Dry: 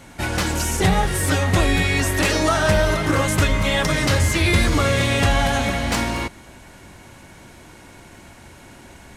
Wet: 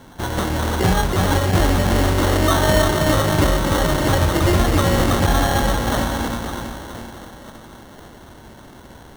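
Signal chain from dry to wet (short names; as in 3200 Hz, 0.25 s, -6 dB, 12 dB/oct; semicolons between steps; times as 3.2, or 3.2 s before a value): split-band echo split 1900 Hz, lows 0.324 s, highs 0.514 s, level -4.5 dB; sample-and-hold 18×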